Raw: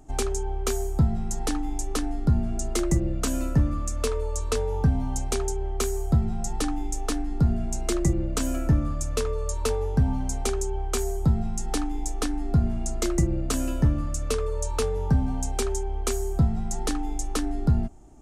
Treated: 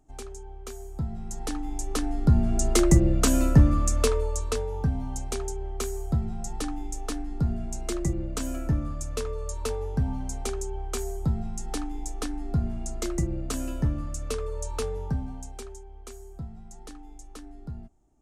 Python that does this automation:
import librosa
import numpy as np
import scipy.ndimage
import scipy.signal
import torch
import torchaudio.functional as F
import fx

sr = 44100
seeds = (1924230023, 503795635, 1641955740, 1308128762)

y = fx.gain(x, sr, db=fx.line((0.76, -13.0), (1.33, -6.0), (2.68, 5.0), (3.94, 5.0), (4.71, -4.5), (14.92, -4.5), (15.85, -16.5)))